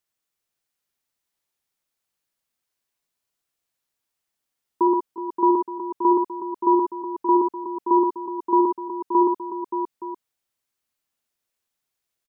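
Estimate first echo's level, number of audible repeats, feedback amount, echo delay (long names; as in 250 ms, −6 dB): −8.0 dB, 4, repeats not evenly spaced, 62 ms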